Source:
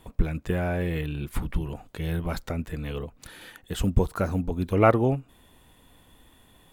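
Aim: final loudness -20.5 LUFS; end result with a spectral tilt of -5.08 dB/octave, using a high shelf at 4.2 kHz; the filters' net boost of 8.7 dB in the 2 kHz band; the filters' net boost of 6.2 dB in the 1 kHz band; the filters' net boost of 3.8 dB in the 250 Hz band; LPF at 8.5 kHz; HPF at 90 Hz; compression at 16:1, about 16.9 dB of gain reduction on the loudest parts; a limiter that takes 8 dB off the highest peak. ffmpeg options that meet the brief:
-af "highpass=90,lowpass=8500,equalizer=f=250:t=o:g=5,equalizer=f=1000:t=o:g=5,equalizer=f=2000:t=o:g=9,highshelf=f=4200:g=3.5,acompressor=threshold=0.0631:ratio=16,volume=4.22,alimiter=limit=0.422:level=0:latency=1"

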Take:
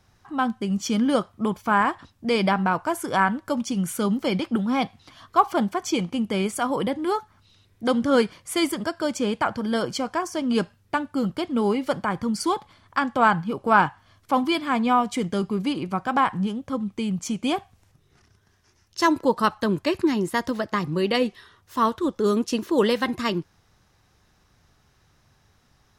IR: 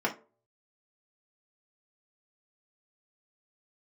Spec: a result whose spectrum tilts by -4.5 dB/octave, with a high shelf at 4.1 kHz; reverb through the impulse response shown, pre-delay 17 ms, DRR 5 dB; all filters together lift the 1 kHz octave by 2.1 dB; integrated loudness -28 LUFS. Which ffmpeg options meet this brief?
-filter_complex "[0:a]equalizer=f=1000:t=o:g=3,highshelf=f=4100:g=-7.5,asplit=2[s0][s1];[1:a]atrim=start_sample=2205,adelay=17[s2];[s1][s2]afir=irnorm=-1:irlink=0,volume=0.188[s3];[s0][s3]amix=inputs=2:normalize=0,volume=0.501"

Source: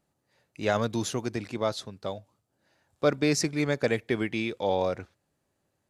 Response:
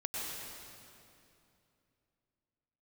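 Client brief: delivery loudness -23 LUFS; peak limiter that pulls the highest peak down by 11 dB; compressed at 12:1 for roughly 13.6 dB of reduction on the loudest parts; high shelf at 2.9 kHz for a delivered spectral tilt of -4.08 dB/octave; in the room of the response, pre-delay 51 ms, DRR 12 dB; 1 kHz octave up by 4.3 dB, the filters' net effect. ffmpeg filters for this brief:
-filter_complex "[0:a]equalizer=f=1000:t=o:g=5.5,highshelf=f=2900:g=3,acompressor=threshold=0.0282:ratio=12,alimiter=level_in=1.5:limit=0.0631:level=0:latency=1,volume=0.668,asplit=2[s0][s1];[1:a]atrim=start_sample=2205,adelay=51[s2];[s1][s2]afir=irnorm=-1:irlink=0,volume=0.168[s3];[s0][s3]amix=inputs=2:normalize=0,volume=7.08"

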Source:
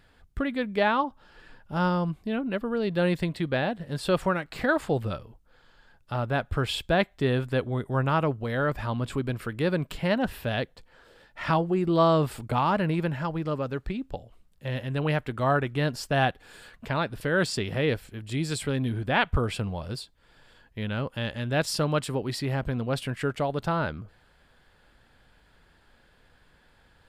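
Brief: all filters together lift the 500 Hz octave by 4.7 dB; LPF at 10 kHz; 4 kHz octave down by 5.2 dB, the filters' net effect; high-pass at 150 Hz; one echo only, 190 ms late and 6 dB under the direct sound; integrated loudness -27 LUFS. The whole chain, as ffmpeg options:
-af "highpass=150,lowpass=10000,equalizer=f=500:t=o:g=6,equalizer=f=4000:t=o:g=-7,aecho=1:1:190:0.501,volume=0.794"

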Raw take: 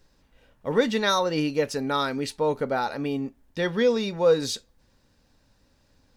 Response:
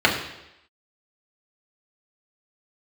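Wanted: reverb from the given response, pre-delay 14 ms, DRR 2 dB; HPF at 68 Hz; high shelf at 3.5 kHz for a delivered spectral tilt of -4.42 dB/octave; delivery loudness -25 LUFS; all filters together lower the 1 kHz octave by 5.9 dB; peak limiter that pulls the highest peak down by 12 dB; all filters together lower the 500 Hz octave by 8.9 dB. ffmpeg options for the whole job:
-filter_complex "[0:a]highpass=68,equalizer=f=500:t=o:g=-8.5,equalizer=f=1000:t=o:g=-6,highshelf=f=3500:g=5,alimiter=level_in=1.12:limit=0.0631:level=0:latency=1,volume=0.891,asplit=2[s0][s1];[1:a]atrim=start_sample=2205,adelay=14[s2];[s1][s2]afir=irnorm=-1:irlink=0,volume=0.0708[s3];[s0][s3]amix=inputs=2:normalize=0,volume=2.24"

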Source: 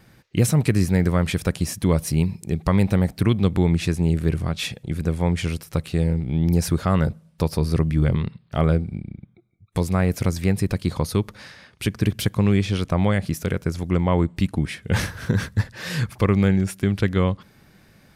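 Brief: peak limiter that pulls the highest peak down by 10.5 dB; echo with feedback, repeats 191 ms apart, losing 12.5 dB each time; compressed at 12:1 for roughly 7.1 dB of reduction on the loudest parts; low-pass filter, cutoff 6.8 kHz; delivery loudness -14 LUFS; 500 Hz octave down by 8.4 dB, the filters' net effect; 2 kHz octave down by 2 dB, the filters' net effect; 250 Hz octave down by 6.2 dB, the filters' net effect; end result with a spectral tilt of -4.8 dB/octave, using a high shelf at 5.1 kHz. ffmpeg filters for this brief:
-af "lowpass=6800,equalizer=f=250:t=o:g=-9,equalizer=f=500:t=o:g=-7.5,equalizer=f=2000:t=o:g=-3,highshelf=f=5100:g=7,acompressor=threshold=0.0631:ratio=12,alimiter=limit=0.0668:level=0:latency=1,aecho=1:1:191|382|573:0.237|0.0569|0.0137,volume=10"

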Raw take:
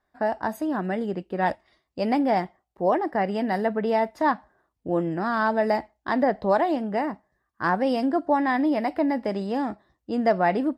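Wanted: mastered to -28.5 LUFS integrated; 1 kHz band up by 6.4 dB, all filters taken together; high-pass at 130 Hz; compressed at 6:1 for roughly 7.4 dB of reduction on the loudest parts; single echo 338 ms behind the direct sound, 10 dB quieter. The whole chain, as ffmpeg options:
-af "highpass=130,equalizer=f=1000:t=o:g=8.5,acompressor=threshold=0.112:ratio=6,aecho=1:1:338:0.316,volume=0.708"

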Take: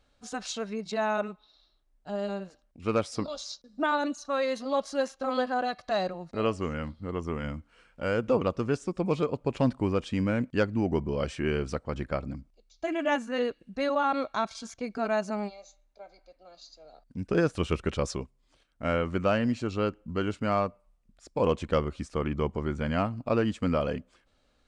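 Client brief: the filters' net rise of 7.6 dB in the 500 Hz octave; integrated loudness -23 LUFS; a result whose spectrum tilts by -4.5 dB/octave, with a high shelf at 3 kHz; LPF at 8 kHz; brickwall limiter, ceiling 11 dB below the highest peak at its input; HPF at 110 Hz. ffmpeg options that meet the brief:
-af "highpass=110,lowpass=8000,equalizer=f=500:t=o:g=8.5,highshelf=f=3000:g=7.5,volume=2,alimiter=limit=0.266:level=0:latency=1"

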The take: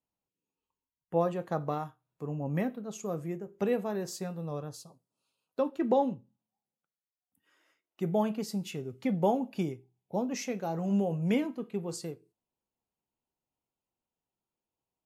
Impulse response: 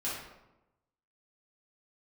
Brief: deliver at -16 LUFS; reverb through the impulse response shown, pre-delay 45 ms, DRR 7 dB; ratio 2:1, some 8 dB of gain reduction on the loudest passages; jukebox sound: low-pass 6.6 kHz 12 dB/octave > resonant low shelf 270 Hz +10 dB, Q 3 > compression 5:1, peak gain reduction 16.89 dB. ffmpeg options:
-filter_complex "[0:a]acompressor=threshold=0.0158:ratio=2,asplit=2[s0][s1];[1:a]atrim=start_sample=2205,adelay=45[s2];[s1][s2]afir=irnorm=-1:irlink=0,volume=0.266[s3];[s0][s3]amix=inputs=2:normalize=0,lowpass=6600,lowshelf=f=270:t=q:w=3:g=10,acompressor=threshold=0.0282:ratio=5,volume=8.91"

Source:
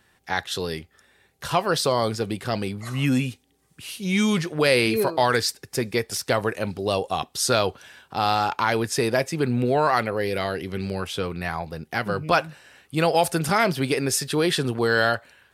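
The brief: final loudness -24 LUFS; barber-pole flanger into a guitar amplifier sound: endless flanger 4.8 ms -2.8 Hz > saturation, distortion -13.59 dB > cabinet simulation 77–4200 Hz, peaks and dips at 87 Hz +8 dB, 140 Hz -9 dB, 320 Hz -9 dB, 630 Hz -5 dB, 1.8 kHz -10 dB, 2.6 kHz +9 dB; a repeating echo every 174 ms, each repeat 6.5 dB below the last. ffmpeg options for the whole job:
-filter_complex "[0:a]aecho=1:1:174|348|522|696|870|1044:0.473|0.222|0.105|0.0491|0.0231|0.0109,asplit=2[s0][s1];[s1]adelay=4.8,afreqshift=-2.8[s2];[s0][s2]amix=inputs=2:normalize=1,asoftclip=threshold=0.112,highpass=77,equalizer=f=87:t=q:w=4:g=8,equalizer=f=140:t=q:w=4:g=-9,equalizer=f=320:t=q:w=4:g=-9,equalizer=f=630:t=q:w=4:g=-5,equalizer=f=1800:t=q:w=4:g=-10,equalizer=f=2600:t=q:w=4:g=9,lowpass=f=4200:w=0.5412,lowpass=f=4200:w=1.3066,volume=1.88"

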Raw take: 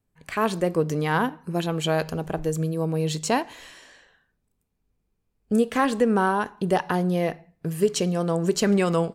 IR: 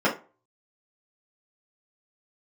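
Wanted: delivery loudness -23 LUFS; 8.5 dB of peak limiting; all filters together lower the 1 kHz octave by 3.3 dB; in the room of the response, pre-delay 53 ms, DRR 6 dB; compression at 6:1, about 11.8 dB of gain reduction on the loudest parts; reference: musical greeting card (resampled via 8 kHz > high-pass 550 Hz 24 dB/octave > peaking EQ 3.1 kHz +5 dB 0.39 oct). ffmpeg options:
-filter_complex "[0:a]equalizer=f=1000:t=o:g=-4,acompressor=threshold=0.0355:ratio=6,alimiter=level_in=1.26:limit=0.0631:level=0:latency=1,volume=0.794,asplit=2[s0][s1];[1:a]atrim=start_sample=2205,adelay=53[s2];[s1][s2]afir=irnorm=-1:irlink=0,volume=0.0794[s3];[s0][s3]amix=inputs=2:normalize=0,aresample=8000,aresample=44100,highpass=f=550:w=0.5412,highpass=f=550:w=1.3066,equalizer=f=3100:t=o:w=0.39:g=5,volume=7.94"

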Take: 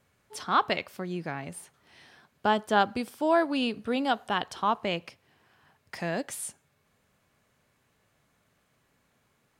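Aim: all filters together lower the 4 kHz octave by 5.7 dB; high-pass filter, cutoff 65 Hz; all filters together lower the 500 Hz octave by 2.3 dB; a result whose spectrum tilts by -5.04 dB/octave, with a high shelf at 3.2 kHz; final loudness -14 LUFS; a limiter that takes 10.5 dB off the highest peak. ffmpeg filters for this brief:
-af "highpass=65,equalizer=f=500:t=o:g=-3,highshelf=f=3200:g=-6,equalizer=f=4000:t=o:g=-4,volume=10.6,alimiter=limit=0.841:level=0:latency=1"

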